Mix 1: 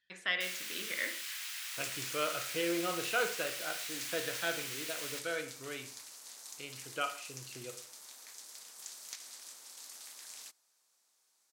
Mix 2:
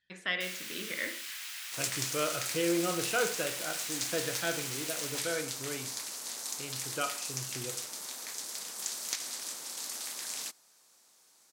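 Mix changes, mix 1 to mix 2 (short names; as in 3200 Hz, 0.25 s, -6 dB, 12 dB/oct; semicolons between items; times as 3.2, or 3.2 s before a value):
second sound +10.5 dB; master: add low shelf 350 Hz +10 dB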